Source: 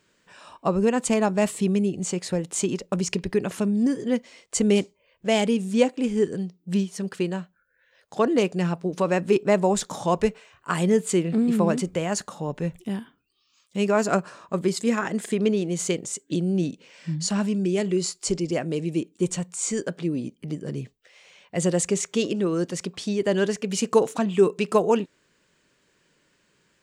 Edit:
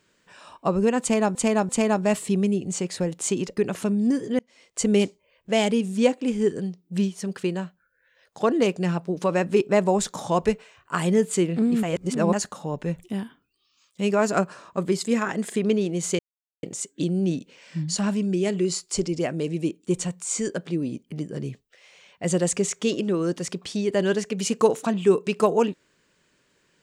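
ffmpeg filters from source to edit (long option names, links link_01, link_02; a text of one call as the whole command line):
ffmpeg -i in.wav -filter_complex "[0:a]asplit=8[link_01][link_02][link_03][link_04][link_05][link_06][link_07][link_08];[link_01]atrim=end=1.352[link_09];[link_02]atrim=start=1.008:end=1.352[link_10];[link_03]atrim=start=1.008:end=2.892[link_11];[link_04]atrim=start=3.328:end=4.15,asetpts=PTS-STARTPTS,afade=type=out:start_time=0.818:duration=0.004:curve=hsin[link_12];[link_05]atrim=start=4.15:end=11.592,asetpts=PTS-STARTPTS,afade=type=in:duration=0.61:curve=qsin[link_13];[link_06]atrim=start=11.588:end=12.092,asetpts=PTS-STARTPTS,areverse[link_14];[link_07]atrim=start=12.088:end=15.95,asetpts=PTS-STARTPTS,afade=type=out:start_time=3.858:duration=0.004:curve=hsin,apad=pad_dur=0.44[link_15];[link_08]atrim=start=15.95,asetpts=PTS-STARTPTS,afade=type=in:duration=0.004:curve=hsin[link_16];[link_09][link_10]acrossfade=duration=0.004:curve1=hsin:curve2=hsin[link_17];[link_17][link_11]acrossfade=duration=0.004:curve1=hsin:curve2=hsin[link_18];[link_12][link_13]concat=n=2:v=0:a=1[link_19];[link_18][link_19]acrossfade=duration=0.004:curve1=hsin:curve2=hsin[link_20];[link_20][link_14]acrossfade=duration=0.004:curve1=hsin:curve2=hsin[link_21];[link_15][link_16]concat=n=2:v=0:a=1[link_22];[link_21][link_22]acrossfade=duration=0.004:curve1=hsin:curve2=hsin" out.wav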